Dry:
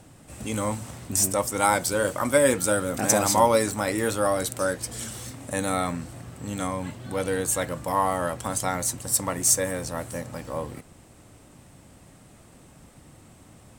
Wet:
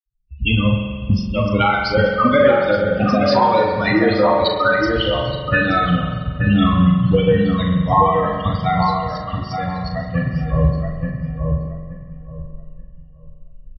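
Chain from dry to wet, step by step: expander on every frequency bin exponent 3; recorder AGC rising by 48 dB/s; gate -53 dBFS, range -11 dB; doubling 39 ms -7 dB; filtered feedback delay 875 ms, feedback 23%, low-pass 1.4 kHz, level -4.5 dB; spring tank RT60 1.6 s, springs 44 ms, chirp 25 ms, DRR 2 dB; resampled via 11.025 kHz; trim +6.5 dB; Vorbis 32 kbps 22.05 kHz

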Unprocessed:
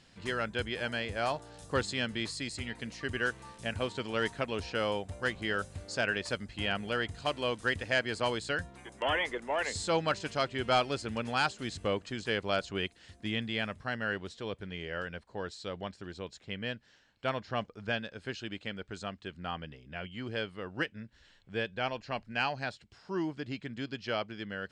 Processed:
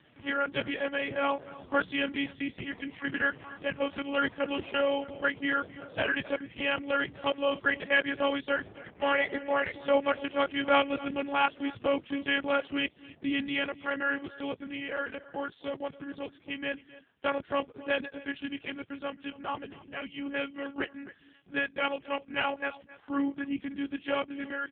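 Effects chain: dynamic bell 1 kHz, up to -4 dB, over -53 dBFS, Q 5.3; monotone LPC vocoder at 8 kHz 280 Hz; echo from a far wall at 46 m, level -18 dB; trim +6 dB; AMR-NB 5.15 kbps 8 kHz

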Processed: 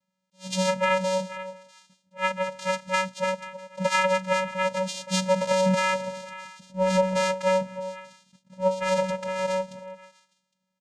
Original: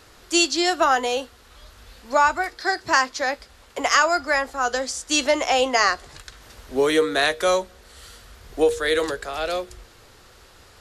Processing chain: 7.54–8.61 s: octave divider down 1 oct, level -6 dB; comb 1.6 ms, depth 35%; gate -39 dBFS, range -30 dB; repeats whose band climbs or falls 162 ms, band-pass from 160 Hz, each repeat 1.4 oct, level -11 dB; 5.53–6.74 s: transient shaper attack -11 dB, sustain +7 dB; compression 1.5:1, threshold -24 dBFS, peak gain reduction 4.5 dB; vocoder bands 4, square 187 Hz; treble shelf 5.9 kHz +11 dB; attacks held to a fixed rise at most 290 dB/s

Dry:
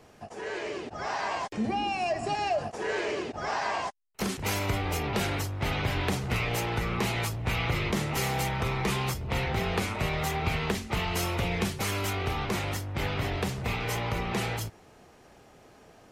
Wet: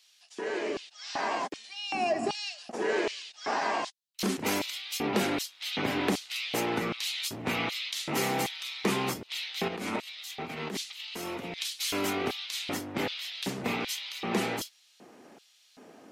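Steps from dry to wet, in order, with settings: 9.68–11.58 s: compressor with a negative ratio -36 dBFS, ratio -1; LFO high-pass square 1.3 Hz 250–3700 Hz

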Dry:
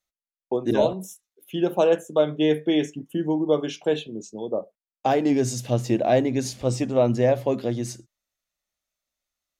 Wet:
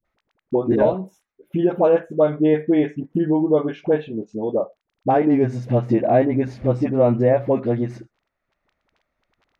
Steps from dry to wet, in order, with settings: high-order bell 4.6 kHz -11.5 dB; crackle 15 per s -53 dBFS; distance through air 220 m; phase dispersion highs, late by 49 ms, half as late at 500 Hz; three bands compressed up and down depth 40%; trim +4.5 dB

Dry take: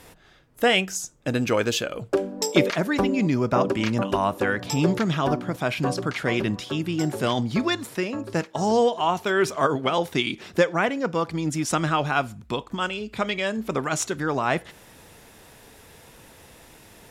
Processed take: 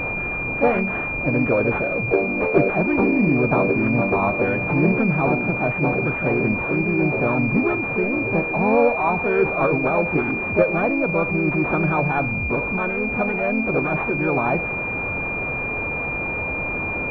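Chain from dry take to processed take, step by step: jump at every zero crossing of -23.5 dBFS; harmony voices +3 st -4 dB; class-D stage that switches slowly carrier 2.4 kHz

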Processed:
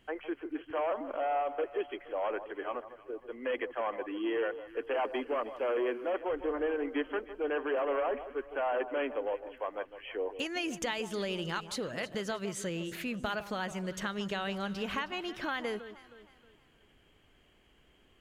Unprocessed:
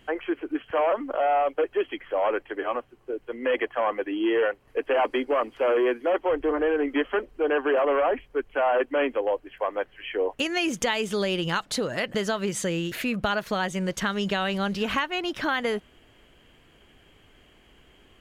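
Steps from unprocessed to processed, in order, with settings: echo whose repeats swap between lows and highs 157 ms, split 1.2 kHz, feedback 61%, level -11.5 dB; trim -9 dB

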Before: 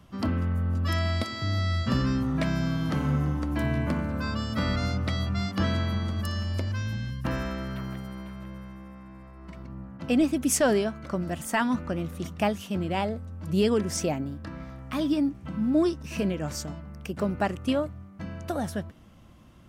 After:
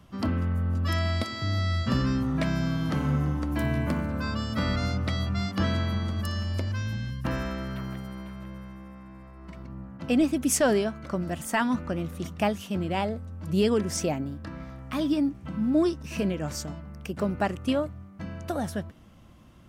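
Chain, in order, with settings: 3.52–4.06 s: treble shelf 11 kHz +9.5 dB

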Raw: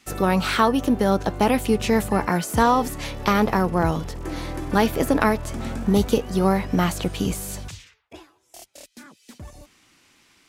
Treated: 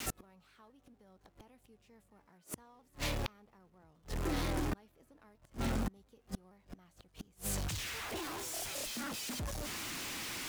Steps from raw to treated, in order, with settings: jump at every zero crossing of -28 dBFS; inverted gate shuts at -17 dBFS, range -36 dB; vibrato with a chosen wave saw down 4.3 Hz, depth 100 cents; trim -8 dB

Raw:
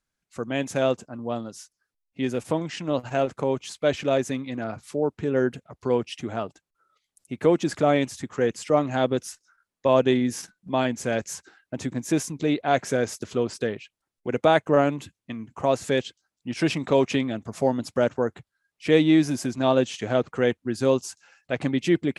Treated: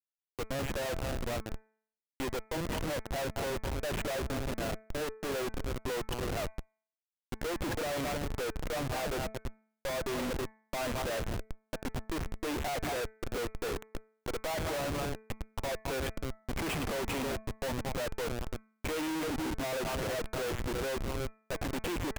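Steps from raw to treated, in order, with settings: three-band isolator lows -19 dB, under 360 Hz, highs -15 dB, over 3.9 kHz; repeats whose band climbs or falls 106 ms, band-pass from 2.6 kHz, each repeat -1.4 oct, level -6 dB; 12.77–13.37 s: transient shaper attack +11 dB, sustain -8 dB; Schmitt trigger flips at -33.5 dBFS; de-hum 218.8 Hz, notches 11; trim -5.5 dB

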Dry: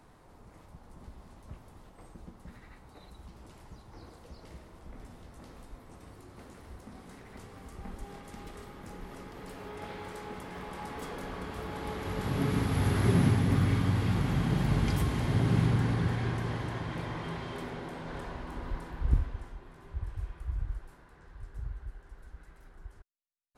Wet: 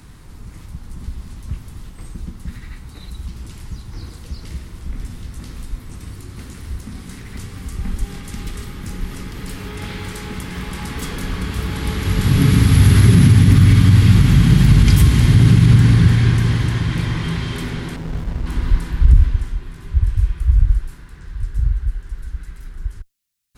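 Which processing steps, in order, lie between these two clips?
amplifier tone stack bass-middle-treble 6-0-2; loudness maximiser +34 dB; 17.96–18.46 s: sliding maximum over 65 samples; trim -1 dB

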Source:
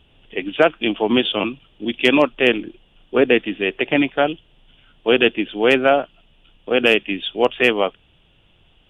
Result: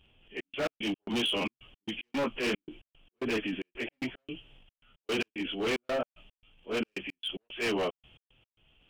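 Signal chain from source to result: frequency-domain pitch shifter -1 st; peaking EQ 3.3 kHz +4.5 dB 0.55 oct; overload inside the chain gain 18.5 dB; trance gate "xxx.x.x." 112 bpm -60 dB; transient shaper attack -3 dB, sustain +8 dB; trim -7.5 dB

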